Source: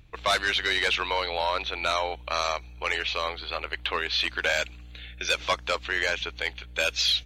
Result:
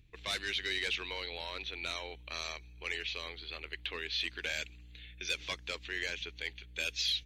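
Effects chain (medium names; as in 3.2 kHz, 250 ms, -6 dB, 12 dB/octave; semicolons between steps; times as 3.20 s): high-order bell 890 Hz -10.5 dB; trim -8.5 dB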